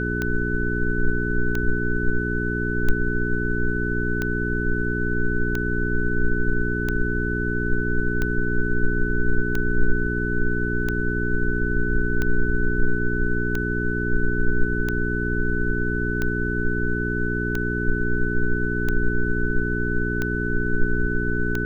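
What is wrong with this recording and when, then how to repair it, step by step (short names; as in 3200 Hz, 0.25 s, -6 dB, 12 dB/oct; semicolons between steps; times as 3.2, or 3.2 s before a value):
hum 60 Hz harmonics 7 -26 dBFS
tick 45 rpm -12 dBFS
tone 1500 Hz -27 dBFS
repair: de-click; notch 1500 Hz, Q 30; de-hum 60 Hz, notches 7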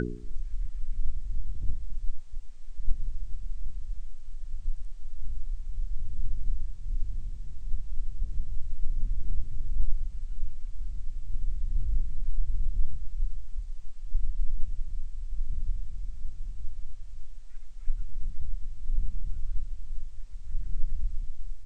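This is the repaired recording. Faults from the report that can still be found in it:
none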